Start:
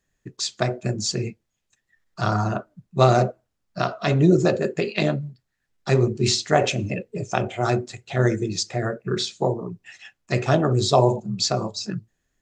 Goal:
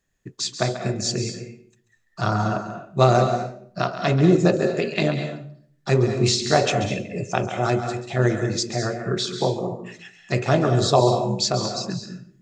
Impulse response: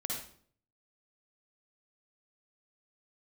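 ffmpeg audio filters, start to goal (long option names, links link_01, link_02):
-filter_complex "[0:a]asplit=2[link_01][link_02];[1:a]atrim=start_sample=2205,lowshelf=frequency=170:gain=-6.5,adelay=137[link_03];[link_02][link_03]afir=irnorm=-1:irlink=0,volume=-8.5dB[link_04];[link_01][link_04]amix=inputs=2:normalize=0"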